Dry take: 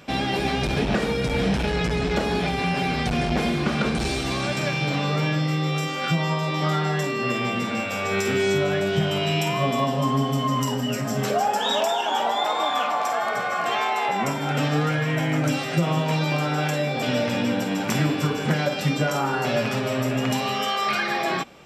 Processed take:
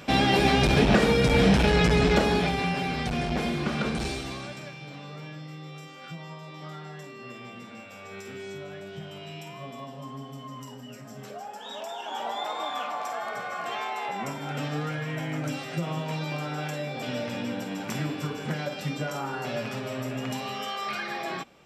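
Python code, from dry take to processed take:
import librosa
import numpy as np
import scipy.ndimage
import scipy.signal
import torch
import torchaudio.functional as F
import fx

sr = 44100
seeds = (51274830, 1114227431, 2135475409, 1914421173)

y = fx.gain(x, sr, db=fx.line((2.07, 3.0), (2.83, -5.0), (4.04, -5.0), (4.76, -17.5), (11.61, -17.5), (12.3, -8.5)))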